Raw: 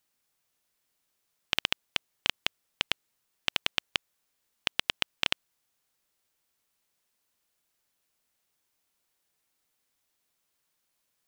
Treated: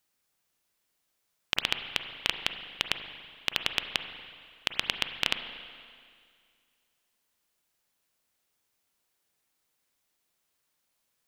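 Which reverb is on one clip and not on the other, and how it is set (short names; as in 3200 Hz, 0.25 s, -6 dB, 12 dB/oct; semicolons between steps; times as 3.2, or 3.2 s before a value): spring tank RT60 2.1 s, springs 33/41/47 ms, chirp 40 ms, DRR 7 dB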